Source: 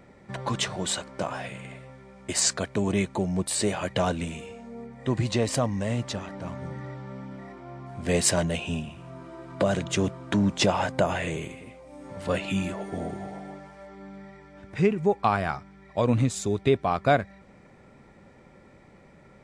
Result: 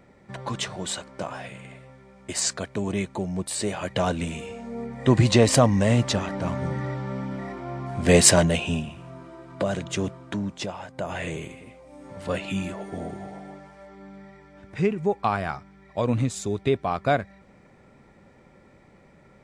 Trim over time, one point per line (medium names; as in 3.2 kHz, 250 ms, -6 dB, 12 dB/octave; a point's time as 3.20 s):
3.64 s -2 dB
4.95 s +8 dB
8.21 s +8 dB
9.45 s -2 dB
10.12 s -2 dB
10.88 s -13 dB
11.21 s -1 dB